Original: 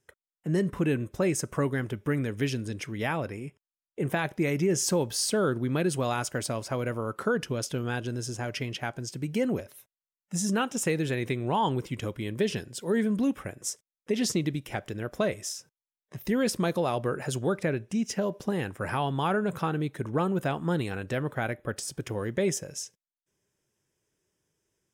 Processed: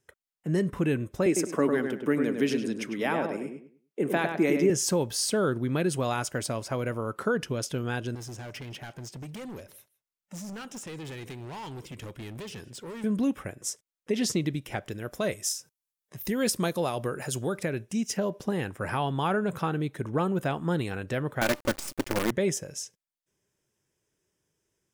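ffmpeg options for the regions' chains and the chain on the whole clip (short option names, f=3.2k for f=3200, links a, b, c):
-filter_complex "[0:a]asettb=1/sr,asplit=3[a][b][c];[a]atrim=end=1.264[d];[b]atrim=start=1.26:end=4.7,asetpts=PTS-STARTPTS,afade=t=in:d=0.004:c=qsin,afade=t=out:st=3.436:d=0.004:c=qsin,highpass=f=220:w=0.5412,highpass=f=220:w=1.3066,lowshelf=f=430:g=7,asplit=2[e][f];[f]adelay=102,lowpass=f=2.6k:p=1,volume=-5dB,asplit=2[g][h];[h]adelay=102,lowpass=f=2.6k:p=1,volume=0.29,asplit=2[i][j];[j]adelay=102,lowpass=f=2.6k:p=1,volume=0.29,asplit=2[k][l];[l]adelay=102,lowpass=f=2.6k:p=1,volume=0.29[m];[e][g][i][k][m]amix=inputs=5:normalize=0,atrim=end_sample=151704[n];[c]atrim=start=4.696[o];[d][n]acrossfade=d=0.004:c1=hsin:c2=qsin[p];[p][o]acrossfade=d=0.004:c1=qsin:c2=hsin,asettb=1/sr,asplit=3[q][r][s];[q]atrim=end=8.154[t];[r]atrim=start=8.15:end=13.04,asetpts=PTS-STARTPTS,afade=t=in:d=0.004:c=qsin,afade=t=out:st=4.886:d=0.004:c=qsin,acrossover=split=2500|7100[u][v][w];[u]acompressor=threshold=-33dB:ratio=4[x];[v]acompressor=threshold=-44dB:ratio=4[y];[w]acompressor=threshold=-50dB:ratio=4[z];[x][y][z]amix=inputs=3:normalize=0,asoftclip=type=hard:threshold=-37dB,aecho=1:1:159:0.075,atrim=end_sample=215649[aa];[s]atrim=start=13.036[ab];[t][aa]acrossfade=d=0.004:c1=hsin:c2=qsin[ac];[ac][ab]acrossfade=d=0.004:c1=qsin:c2=hsin,asettb=1/sr,asplit=3[ad][ae][af];[ad]atrim=end=14.914[ag];[ae]atrim=start=14.91:end=18.17,asetpts=PTS-STARTPTS,afade=t=in:d=0.004:c=qsin,afade=t=out:st=3.256:d=0.004:c=qsin,aemphasis=mode=production:type=cd,tremolo=f=5.2:d=0.32[ah];[af]atrim=start=18.166[ai];[ag][ah]acrossfade=d=0.004:c1=hsin:c2=qsin[aj];[aj][ai]acrossfade=d=0.004:c1=qsin:c2=hsin,asettb=1/sr,asplit=3[ak][al][am];[ak]atrim=end=21.414[an];[al]atrim=start=21.41:end=22.31,asetpts=PTS-STARTPTS,afade=t=in:d=0.004:c=qsin,afade=t=out:st=0.896:d=0.004:c=qsin,equalizer=f=340:w=0.37:g=5,aecho=1:1:3.4:0.69,atrim=end_sample=39690,acrusher=bits=5:dc=4:mix=0:aa=0.000001[ao];[am]atrim=start=22.306[ap];[an][ao]acrossfade=d=0.004:c1=hsin:c2=qsin[aq];[aq][ap]acrossfade=d=0.004:c1=qsin:c2=hsin"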